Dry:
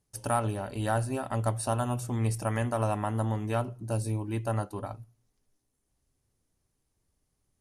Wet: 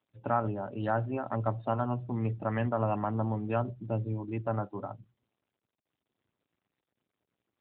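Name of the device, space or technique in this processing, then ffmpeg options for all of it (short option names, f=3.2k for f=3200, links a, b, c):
mobile call with aggressive noise cancelling: -filter_complex "[0:a]asplit=3[a][b][c];[a]afade=t=out:st=2.51:d=0.02[d];[b]bass=f=250:g=2,treble=f=4k:g=6,afade=t=in:st=2.51:d=0.02,afade=t=out:st=4.13:d=0.02[e];[c]afade=t=in:st=4.13:d=0.02[f];[d][e][f]amix=inputs=3:normalize=0,highpass=f=110:w=0.5412,highpass=f=110:w=1.3066,afftdn=nr=16:nf=-42" -ar 8000 -c:a libopencore_amrnb -b:a 12200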